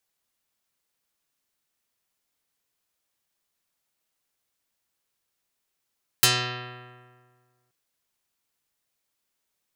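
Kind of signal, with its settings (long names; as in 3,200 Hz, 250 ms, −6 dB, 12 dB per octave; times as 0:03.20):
Karplus-Strong string B2, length 1.48 s, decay 1.78 s, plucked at 0.42, dark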